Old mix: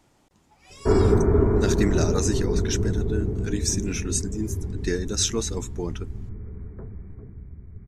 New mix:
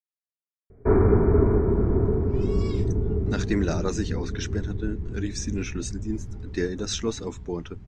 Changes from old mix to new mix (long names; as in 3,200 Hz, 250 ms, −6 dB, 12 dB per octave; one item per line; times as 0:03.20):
speech: entry +1.70 s
master: add high-frequency loss of the air 130 metres